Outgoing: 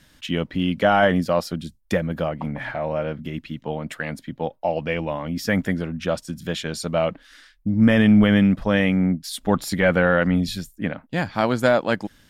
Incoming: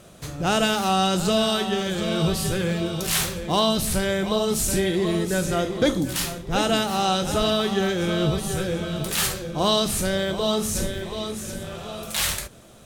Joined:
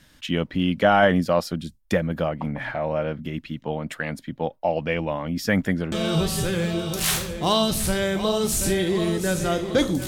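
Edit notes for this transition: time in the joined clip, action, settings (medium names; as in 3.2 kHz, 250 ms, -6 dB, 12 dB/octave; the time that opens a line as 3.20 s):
outgoing
5.92 s: go over to incoming from 1.99 s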